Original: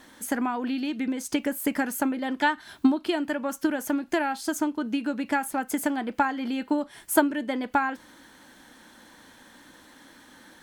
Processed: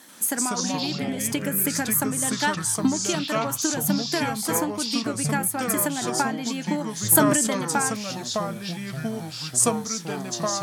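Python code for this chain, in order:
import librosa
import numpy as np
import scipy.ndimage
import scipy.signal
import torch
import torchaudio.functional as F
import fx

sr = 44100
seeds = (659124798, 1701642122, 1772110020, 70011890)

y = fx.peak_eq(x, sr, hz=12000.0, db=15.0, octaves=1.8)
y = fx.echo_pitch(y, sr, ms=87, semitones=-5, count=3, db_per_echo=-3.0)
y = scipy.signal.sosfilt(scipy.signal.butter(2, 130.0, 'highpass', fs=sr, output='sos'), y)
y = fx.sustainer(y, sr, db_per_s=25.0, at=(7.1, 7.54))
y = y * 10.0 ** (-2.0 / 20.0)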